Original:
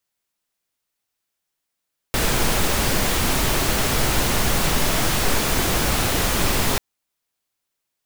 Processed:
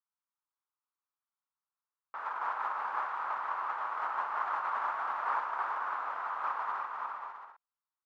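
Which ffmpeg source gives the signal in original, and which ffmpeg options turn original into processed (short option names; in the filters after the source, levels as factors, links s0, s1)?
-f lavfi -i "anoisesrc=c=pink:a=0.543:d=4.64:r=44100:seed=1"
-af "agate=range=0.447:threshold=0.126:ratio=16:detection=peak,asuperpass=centerf=1100:order=4:qfactor=2.2,aecho=1:1:340|544|666.4|739.8|783.9:0.631|0.398|0.251|0.158|0.1"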